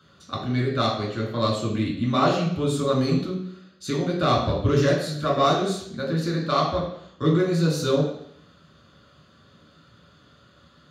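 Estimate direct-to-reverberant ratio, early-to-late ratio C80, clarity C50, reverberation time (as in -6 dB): -3.0 dB, 7.5 dB, 4.5 dB, 0.70 s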